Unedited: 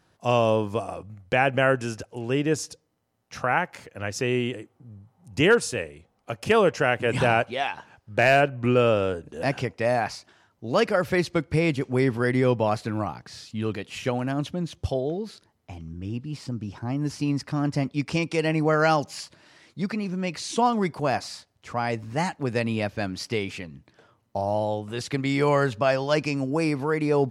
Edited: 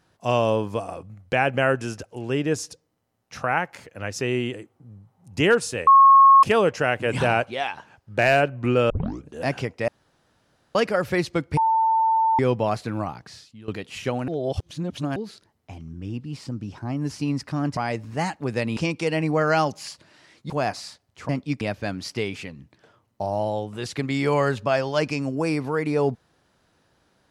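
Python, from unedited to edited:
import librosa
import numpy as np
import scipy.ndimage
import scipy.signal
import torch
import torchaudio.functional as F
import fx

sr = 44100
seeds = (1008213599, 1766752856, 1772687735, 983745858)

y = fx.edit(x, sr, fx.bleep(start_s=5.87, length_s=0.56, hz=1090.0, db=-8.5),
    fx.tape_start(start_s=8.9, length_s=0.36),
    fx.room_tone_fill(start_s=9.88, length_s=0.87),
    fx.bleep(start_s=11.57, length_s=0.82, hz=894.0, db=-16.5),
    fx.fade_out_to(start_s=13.3, length_s=0.38, curve='qua', floor_db=-17.0),
    fx.reverse_span(start_s=14.28, length_s=0.88),
    fx.swap(start_s=17.77, length_s=0.32, other_s=21.76, other_length_s=1.0),
    fx.cut(start_s=19.82, length_s=1.15), tone=tone)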